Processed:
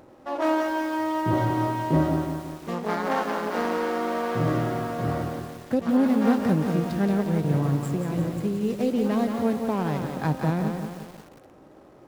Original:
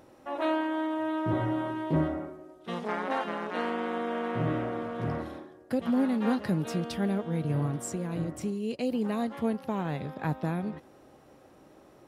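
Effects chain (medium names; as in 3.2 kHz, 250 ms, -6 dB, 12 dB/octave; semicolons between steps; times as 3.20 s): median filter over 15 samples; bit-crushed delay 176 ms, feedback 55%, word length 8-bit, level -5.5 dB; trim +5 dB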